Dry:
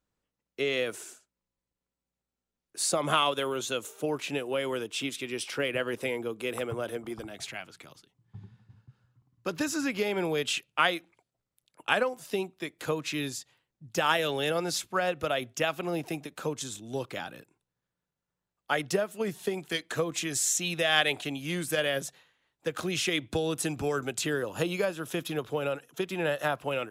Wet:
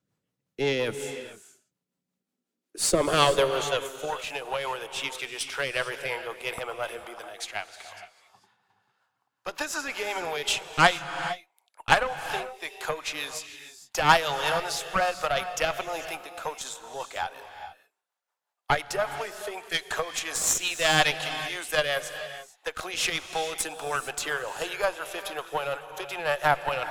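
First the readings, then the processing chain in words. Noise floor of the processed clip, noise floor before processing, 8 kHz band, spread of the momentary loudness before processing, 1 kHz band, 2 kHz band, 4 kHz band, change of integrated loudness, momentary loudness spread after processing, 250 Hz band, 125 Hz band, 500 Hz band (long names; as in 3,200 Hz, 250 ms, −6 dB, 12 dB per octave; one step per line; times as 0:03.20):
−85 dBFS, below −85 dBFS, +2.5 dB, 12 LU, +6.5 dB, +4.0 dB, +3.0 dB, +2.5 dB, 15 LU, −5.0 dB, −1.0 dB, +1.0 dB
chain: high-pass filter sweep 130 Hz → 820 Hz, 0:01.53–0:04.08
harmonic generator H 6 −18 dB, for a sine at −6 dBFS
rotating-speaker cabinet horn 5.5 Hz
reverb whose tail is shaped and stops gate 480 ms rising, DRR 10 dB
level +4.5 dB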